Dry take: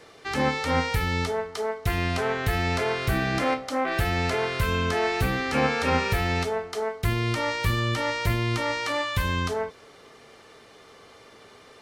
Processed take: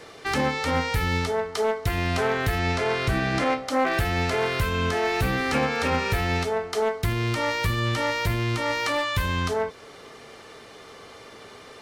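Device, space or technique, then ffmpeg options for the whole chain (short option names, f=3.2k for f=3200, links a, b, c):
limiter into clipper: -filter_complex "[0:a]alimiter=limit=-18dB:level=0:latency=1:release=471,asoftclip=type=hard:threshold=-22dB,asettb=1/sr,asplit=3[a][b][c];[a]atrim=end=2.594[d];[b]atrim=start=2.59:end=3.58,asetpts=PTS-STARTPTS,afade=t=in:d=0.004:c=qsin,afade=t=out:st=0.986:d=0.004:c=qsin,lowpass=9.2k[e];[c]atrim=start=3.576[f];[d][e]acrossfade=d=0.004:c1=hsin:c2=qsin[g];[g][f]acrossfade=d=0.004:c1=qsin:c2=hsin,volume=5.5dB"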